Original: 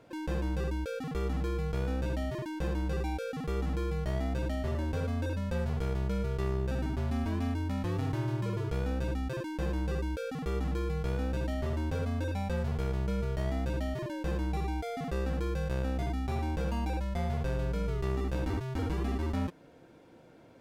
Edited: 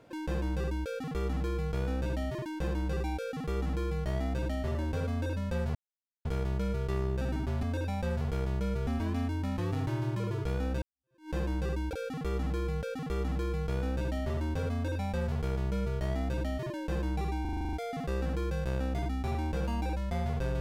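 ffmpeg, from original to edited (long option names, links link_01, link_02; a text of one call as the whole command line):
ffmpeg -i in.wav -filter_complex "[0:a]asplit=15[link_01][link_02][link_03][link_04][link_05][link_06][link_07][link_08][link_09][link_10][link_11][link_12][link_13][link_14][link_15];[link_01]atrim=end=5.75,asetpts=PTS-STARTPTS,afade=type=out:start_time=5.746:duration=0.004:curve=hsin,apad=pad_dur=0.5[link_16];[link_02]atrim=start=5.75:end=7.132,asetpts=PTS-STARTPTS,afade=type=in:duration=0.004:curve=hsin[link_17];[link_03]atrim=start=12.098:end=13.342[link_18];[link_04]atrim=start=7.128:end=9.08,asetpts=PTS-STARTPTS,afade=type=out:start_time=1.948:duration=0.004:curve=hsin[link_19];[link_05]atrim=start=9.08:end=10.192,asetpts=PTS-STARTPTS,afade=type=in:duration=0.49:curve=exp[link_20];[link_06]atrim=start=3.158:end=4.062[link_21];[link_07]atrim=start=10.188:end=14.812[link_22];[link_08]atrim=start=14.768:end=14.812[link_23];[link_09]atrim=start=14.768:end=14.812[link_24];[link_10]atrim=start=14.768:end=14.812[link_25];[link_11]atrim=start=14.768:end=14.812[link_26];[link_12]atrim=start=14.768:end=14.812[link_27];[link_13]atrim=start=14.768:end=14.812[link_28];[link_14]atrim=start=14.768:end=14.812[link_29];[link_15]atrim=start=14.768[link_30];[link_16][link_17]concat=n=2:v=0:a=1[link_31];[link_31][link_18]acrossfade=duration=0.004:curve1=hsin:curve2=hsin[link_32];[link_19][link_20]concat=n=2:v=0:a=1[link_33];[link_32][link_33]acrossfade=duration=0.004:curve1=hsin:curve2=hsin[link_34];[link_34][link_21]acrossfade=duration=0.004:curve1=hsin:curve2=hsin[link_35];[link_35][link_22]acrossfade=duration=0.004:curve1=hsin:curve2=hsin[link_36];[link_36][link_23]acrossfade=duration=0.004:curve1=hsin:curve2=hsin[link_37];[link_37][link_24]acrossfade=duration=0.004:curve1=hsin:curve2=hsin[link_38];[link_38][link_25]acrossfade=duration=0.004:curve1=hsin:curve2=hsin[link_39];[link_39][link_26]acrossfade=duration=0.004:curve1=hsin:curve2=hsin[link_40];[link_40][link_27]acrossfade=duration=0.004:curve1=hsin:curve2=hsin[link_41];[link_41][link_28]acrossfade=duration=0.004:curve1=hsin:curve2=hsin[link_42];[link_42][link_29]acrossfade=duration=0.004:curve1=hsin:curve2=hsin[link_43];[link_43][link_30]acrossfade=duration=0.004:curve1=hsin:curve2=hsin" out.wav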